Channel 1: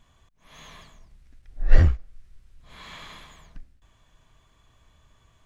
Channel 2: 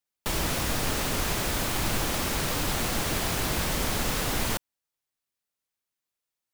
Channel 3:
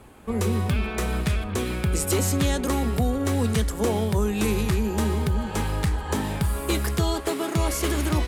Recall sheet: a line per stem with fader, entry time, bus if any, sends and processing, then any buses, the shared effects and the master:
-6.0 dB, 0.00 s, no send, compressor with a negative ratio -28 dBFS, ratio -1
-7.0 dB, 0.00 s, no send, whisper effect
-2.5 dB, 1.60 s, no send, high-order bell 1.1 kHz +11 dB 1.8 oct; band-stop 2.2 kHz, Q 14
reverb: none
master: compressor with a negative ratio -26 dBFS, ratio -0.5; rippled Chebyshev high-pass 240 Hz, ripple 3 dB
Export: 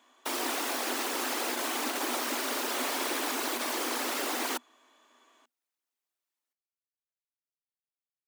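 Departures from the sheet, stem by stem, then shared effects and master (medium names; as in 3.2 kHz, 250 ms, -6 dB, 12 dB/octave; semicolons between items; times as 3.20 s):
stem 2 -7.0 dB -> -0.5 dB; stem 3: muted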